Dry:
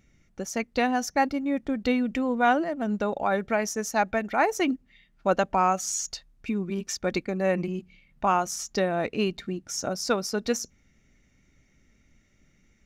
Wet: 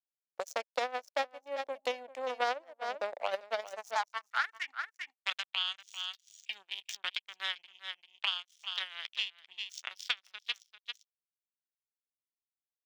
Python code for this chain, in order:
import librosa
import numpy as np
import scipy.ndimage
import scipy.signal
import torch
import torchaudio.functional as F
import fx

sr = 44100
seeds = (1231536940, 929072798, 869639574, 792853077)

p1 = fx.power_curve(x, sr, exponent=3.0)
p2 = fx.filter_sweep_highpass(p1, sr, from_hz=570.0, to_hz=3300.0, start_s=3.6, end_s=5.13, q=5.0)
p3 = p2 + fx.echo_single(p2, sr, ms=394, db=-15.0, dry=0)
y = fx.band_squash(p3, sr, depth_pct=100)